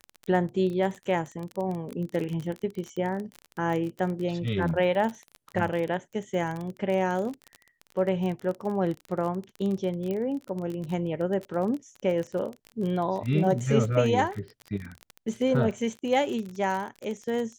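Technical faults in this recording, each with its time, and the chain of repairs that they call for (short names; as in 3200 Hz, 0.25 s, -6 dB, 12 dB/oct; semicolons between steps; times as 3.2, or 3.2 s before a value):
crackle 28/s -31 dBFS
10.11 pop -20 dBFS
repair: de-click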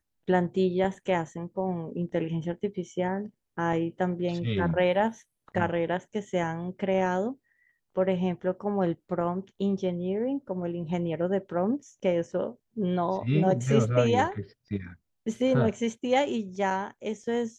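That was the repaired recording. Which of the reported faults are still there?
none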